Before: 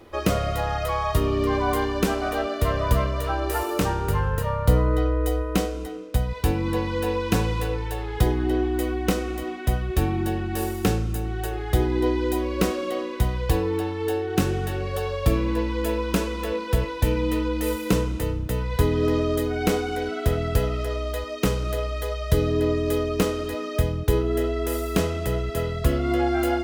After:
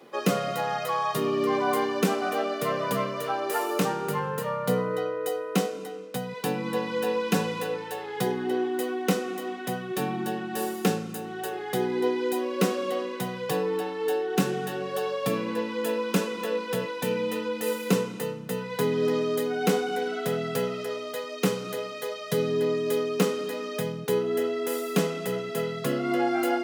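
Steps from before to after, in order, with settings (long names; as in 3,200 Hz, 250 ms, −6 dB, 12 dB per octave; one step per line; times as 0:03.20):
Butterworth high-pass 150 Hz 48 dB per octave
notch comb filter 320 Hz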